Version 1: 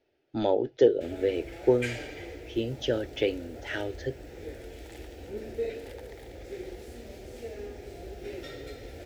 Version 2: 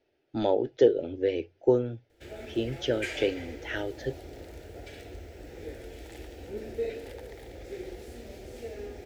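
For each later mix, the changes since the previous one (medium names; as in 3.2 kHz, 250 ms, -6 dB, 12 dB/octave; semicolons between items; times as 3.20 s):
background: entry +1.20 s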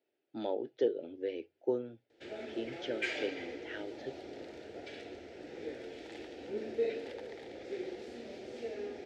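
speech -9.5 dB; master: add Chebyshev band-pass 220–4500 Hz, order 2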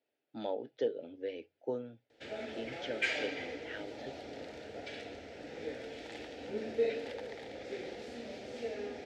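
background +3.5 dB; master: add peaking EQ 360 Hz -12 dB 0.28 oct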